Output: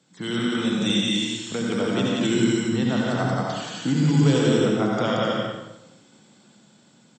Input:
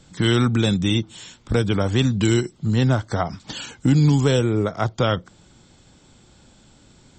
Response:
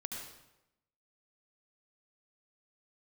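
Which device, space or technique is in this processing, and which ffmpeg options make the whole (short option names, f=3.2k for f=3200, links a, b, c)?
far laptop microphone: -filter_complex "[0:a]asettb=1/sr,asplit=3[a][b][c];[a]atrim=end=0.814[d];[b]atrim=start=0.81:end=1.55,asetpts=PTS-STARTPTS,afade=t=in:d=0.004:c=qsin,afade=t=out:st=0.736:d=0.004:c=qsin,highshelf=f=2k:g=11.5[e];[c]atrim=start=1.546[f];[d][e]acrossfade=d=0.004:c1=hsin:c2=qsin[g];[g][f]acrossfade=d=0.004:c1=qsin:c2=hsin,aecho=1:1:177.8|265.3:0.794|0.501[h];[1:a]atrim=start_sample=2205[i];[h][i]afir=irnorm=-1:irlink=0,highpass=f=150:w=0.5412,highpass=f=150:w=1.3066,dynaudnorm=f=480:g=7:m=11.5dB,volume=-6.5dB"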